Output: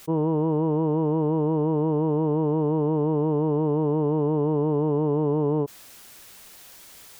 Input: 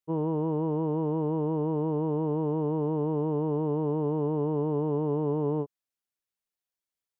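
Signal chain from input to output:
envelope flattener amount 70%
level +4 dB

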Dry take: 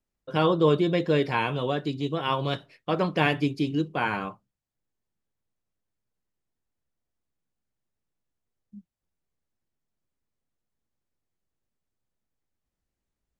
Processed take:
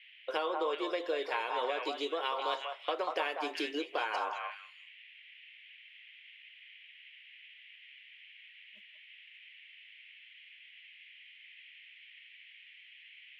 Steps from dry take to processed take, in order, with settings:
noise gate −43 dBFS, range −16 dB
noise in a band 1,900–3,200 Hz −61 dBFS
inverse Chebyshev high-pass filter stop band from 160 Hz, stop band 50 dB
downward compressor 6 to 1, threshold −36 dBFS, peak gain reduction 16 dB
on a send: echo through a band-pass that steps 189 ms, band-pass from 920 Hz, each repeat 1.4 octaves, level 0 dB
on the sum: level +4 dB

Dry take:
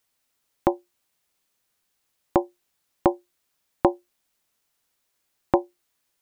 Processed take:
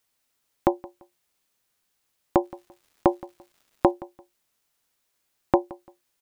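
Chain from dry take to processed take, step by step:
0:02.43–0:03.91: surface crackle 350 per second −51 dBFS
repeating echo 171 ms, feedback 25%, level −21 dB

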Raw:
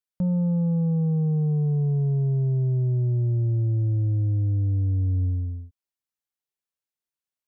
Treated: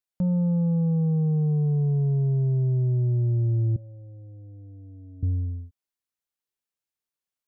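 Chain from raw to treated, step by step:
0:03.76–0:05.23: pair of resonant band-passes 370 Hz, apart 1.3 octaves

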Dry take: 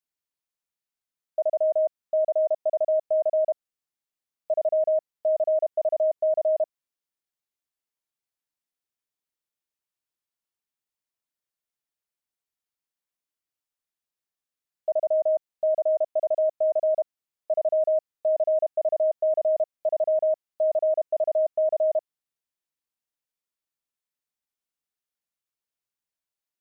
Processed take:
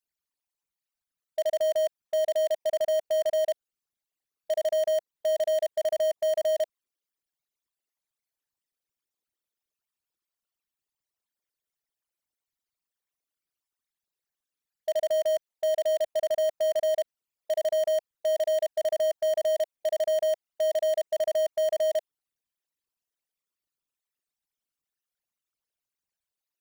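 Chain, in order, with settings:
spectral envelope exaggerated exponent 3
in parallel at −11.5 dB: wrap-around overflow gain 23 dB
on the sum: level −2 dB

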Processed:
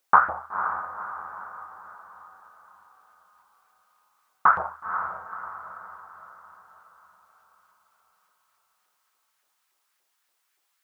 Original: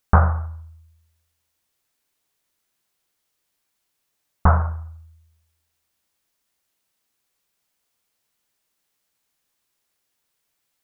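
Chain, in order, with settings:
low shelf with overshoot 440 Hz +7.5 dB, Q 1.5
auto-filter high-pass saw up 3.5 Hz 550–1,800 Hz
feedback delay with all-pass diffusion 500 ms, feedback 48%, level −8.5 dB

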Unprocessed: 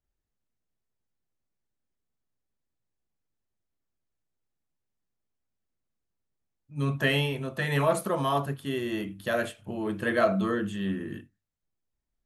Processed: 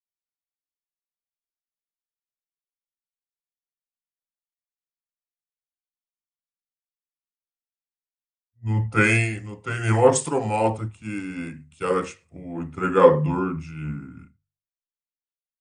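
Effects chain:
hum removal 61.99 Hz, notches 3
change of speed 0.785×
multiband upward and downward expander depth 100%
level +3.5 dB

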